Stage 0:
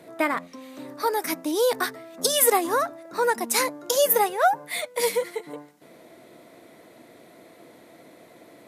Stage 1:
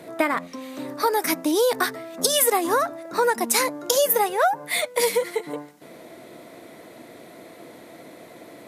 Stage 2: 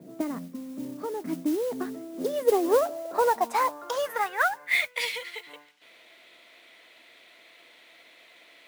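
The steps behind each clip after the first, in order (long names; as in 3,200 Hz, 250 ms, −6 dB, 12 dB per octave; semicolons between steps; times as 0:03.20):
downward compressor 3 to 1, threshold −24 dBFS, peak gain reduction 8 dB; level +6 dB
band-pass filter sweep 200 Hz → 2,900 Hz, 0:01.59–0:05.12; noise that follows the level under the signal 19 dB; level +4 dB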